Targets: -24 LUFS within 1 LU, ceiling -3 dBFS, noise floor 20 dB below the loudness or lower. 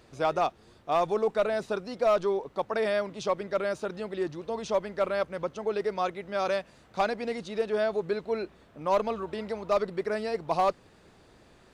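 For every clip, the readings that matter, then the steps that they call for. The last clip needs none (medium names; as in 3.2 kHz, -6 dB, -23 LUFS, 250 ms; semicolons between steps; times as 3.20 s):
clipped samples 0.3%; clipping level -17.5 dBFS; loudness -30.0 LUFS; peak level -17.5 dBFS; loudness target -24.0 LUFS
-> clip repair -17.5 dBFS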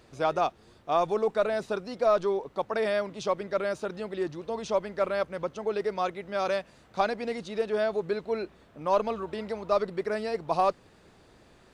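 clipped samples 0.0%; loudness -29.5 LUFS; peak level -12.5 dBFS; loudness target -24.0 LUFS
-> trim +5.5 dB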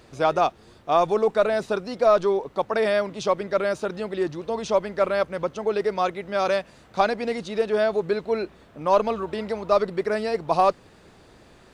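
loudness -24.0 LUFS; peak level -7.0 dBFS; noise floor -53 dBFS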